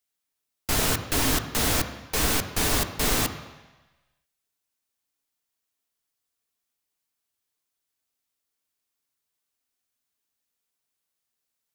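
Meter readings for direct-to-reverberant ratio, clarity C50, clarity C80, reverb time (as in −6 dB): 6.5 dB, 10.0 dB, 11.5 dB, 1.1 s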